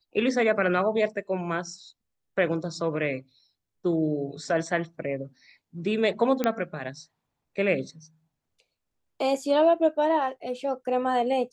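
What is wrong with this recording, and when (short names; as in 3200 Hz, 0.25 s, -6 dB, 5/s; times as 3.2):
6.44 pop -11 dBFS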